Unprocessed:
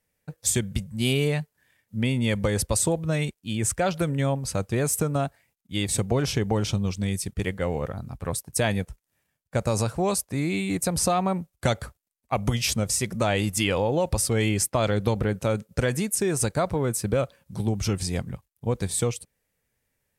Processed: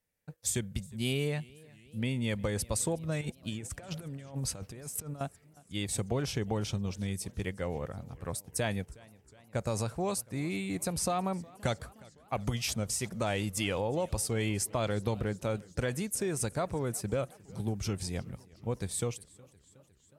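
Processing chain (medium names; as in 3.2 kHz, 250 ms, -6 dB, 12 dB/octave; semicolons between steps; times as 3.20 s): 3.21–5.21 s: compressor with a negative ratio -30 dBFS, ratio -0.5; modulated delay 362 ms, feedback 66%, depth 124 cents, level -23.5 dB; trim -8 dB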